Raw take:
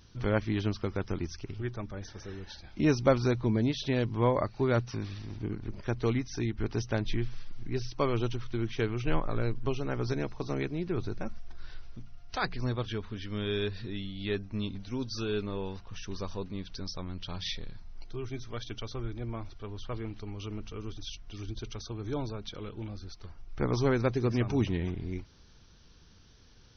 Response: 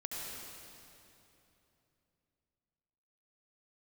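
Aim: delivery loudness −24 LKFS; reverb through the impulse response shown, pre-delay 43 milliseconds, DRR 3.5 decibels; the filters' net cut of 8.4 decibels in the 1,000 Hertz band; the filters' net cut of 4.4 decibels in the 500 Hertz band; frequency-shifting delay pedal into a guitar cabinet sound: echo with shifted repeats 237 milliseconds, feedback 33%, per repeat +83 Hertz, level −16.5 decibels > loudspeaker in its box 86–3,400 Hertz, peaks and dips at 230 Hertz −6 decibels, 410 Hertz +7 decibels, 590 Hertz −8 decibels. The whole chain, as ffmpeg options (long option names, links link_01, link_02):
-filter_complex "[0:a]equalizer=frequency=500:width_type=o:gain=-8.5,equalizer=frequency=1000:width_type=o:gain=-8,asplit=2[link_01][link_02];[1:a]atrim=start_sample=2205,adelay=43[link_03];[link_02][link_03]afir=irnorm=-1:irlink=0,volume=-5dB[link_04];[link_01][link_04]amix=inputs=2:normalize=0,asplit=4[link_05][link_06][link_07][link_08];[link_06]adelay=237,afreqshift=83,volume=-16.5dB[link_09];[link_07]adelay=474,afreqshift=166,volume=-26.1dB[link_10];[link_08]adelay=711,afreqshift=249,volume=-35.8dB[link_11];[link_05][link_09][link_10][link_11]amix=inputs=4:normalize=0,highpass=86,equalizer=frequency=230:width_type=q:width=4:gain=-6,equalizer=frequency=410:width_type=q:width=4:gain=7,equalizer=frequency=590:width_type=q:width=4:gain=-8,lowpass=frequency=3400:width=0.5412,lowpass=frequency=3400:width=1.3066,volume=11dB"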